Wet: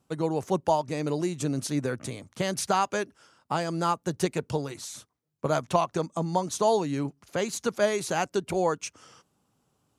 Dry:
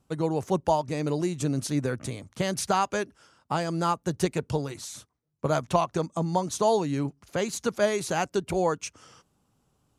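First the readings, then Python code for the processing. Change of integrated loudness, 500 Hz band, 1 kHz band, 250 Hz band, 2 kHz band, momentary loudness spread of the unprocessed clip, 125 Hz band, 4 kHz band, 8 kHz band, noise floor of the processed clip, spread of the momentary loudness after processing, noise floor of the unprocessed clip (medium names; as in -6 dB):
-0.5 dB, -0.5 dB, 0.0 dB, -1.0 dB, 0.0 dB, 9 LU, -2.5 dB, 0.0 dB, 0.0 dB, -74 dBFS, 9 LU, -72 dBFS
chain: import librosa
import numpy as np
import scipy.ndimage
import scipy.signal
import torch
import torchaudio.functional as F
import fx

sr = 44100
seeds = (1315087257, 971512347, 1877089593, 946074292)

y = fx.highpass(x, sr, hz=130.0, slope=6)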